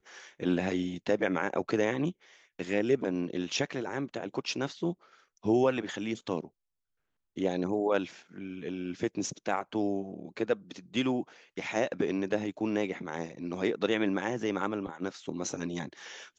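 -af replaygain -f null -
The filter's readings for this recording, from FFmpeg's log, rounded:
track_gain = +12.0 dB
track_peak = 0.149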